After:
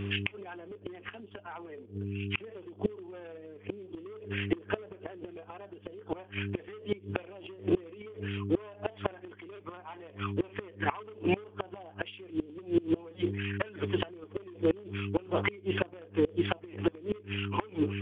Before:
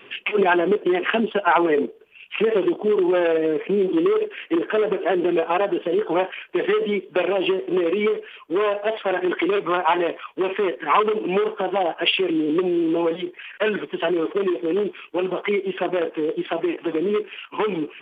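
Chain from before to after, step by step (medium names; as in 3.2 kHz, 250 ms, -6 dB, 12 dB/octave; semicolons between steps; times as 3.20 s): mains buzz 100 Hz, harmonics 4, -33 dBFS -5 dB/octave; bass shelf 82 Hz -3 dB; inverted gate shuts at -14 dBFS, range -25 dB; trim -1.5 dB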